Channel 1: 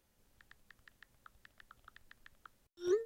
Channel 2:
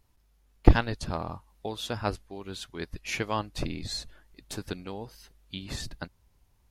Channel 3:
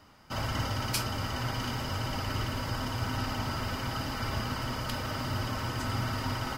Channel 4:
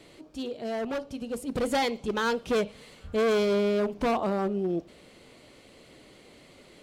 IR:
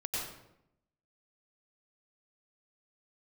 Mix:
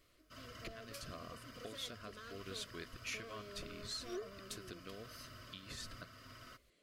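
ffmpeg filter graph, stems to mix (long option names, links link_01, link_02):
-filter_complex "[0:a]adelay=1250,volume=-3.5dB[link_01];[1:a]acompressor=threshold=-38dB:ratio=4,volume=-2dB[link_02];[2:a]volume=-18dB[link_03];[3:a]acompressor=threshold=-29dB:ratio=6,volume=-19dB[link_04];[link_01][link_02][link_03]amix=inputs=3:normalize=0,alimiter=level_in=7.5dB:limit=-24dB:level=0:latency=1:release=438,volume=-7.5dB,volume=0dB[link_05];[link_04][link_05]amix=inputs=2:normalize=0,asuperstop=centerf=850:order=8:qfactor=3.1,lowshelf=frequency=460:gain=-7.5"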